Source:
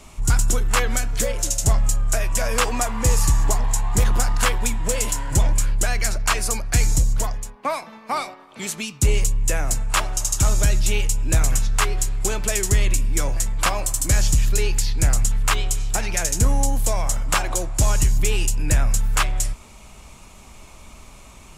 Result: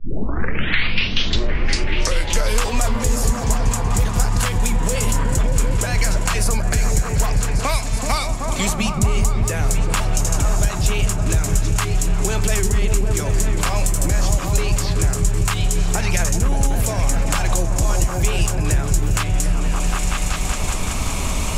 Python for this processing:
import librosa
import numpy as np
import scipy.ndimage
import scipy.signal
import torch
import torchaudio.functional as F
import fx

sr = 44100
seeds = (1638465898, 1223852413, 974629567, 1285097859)

p1 = fx.tape_start_head(x, sr, length_s=2.65)
p2 = fx.over_compress(p1, sr, threshold_db=-22.0, ratio=-0.5)
p3 = p1 + (p2 * librosa.db_to_amplitude(0.5))
p4 = fx.echo_opening(p3, sr, ms=189, hz=200, octaves=1, feedback_pct=70, wet_db=0)
p5 = fx.band_squash(p4, sr, depth_pct=100)
y = p5 * librosa.db_to_amplitude(-4.5)